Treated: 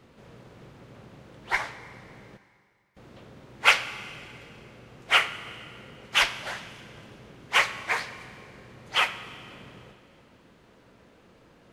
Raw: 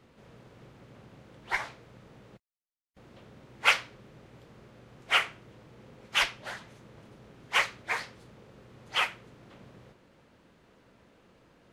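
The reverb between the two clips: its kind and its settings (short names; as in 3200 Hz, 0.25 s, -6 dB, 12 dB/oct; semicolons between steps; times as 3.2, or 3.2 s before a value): Schroeder reverb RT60 2.4 s, combs from 28 ms, DRR 13 dB; gain +4 dB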